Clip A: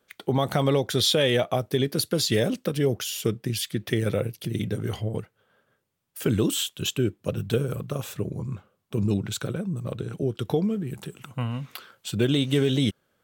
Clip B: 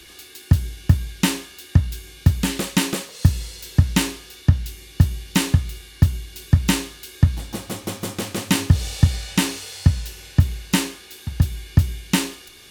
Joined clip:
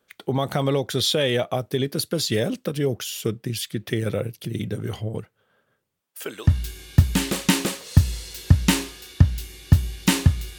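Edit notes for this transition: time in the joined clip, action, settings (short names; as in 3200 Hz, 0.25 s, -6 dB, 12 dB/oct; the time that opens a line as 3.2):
clip A
6–6.51 HPF 260 Hz -> 1100 Hz
6.46 switch to clip B from 1.74 s, crossfade 0.10 s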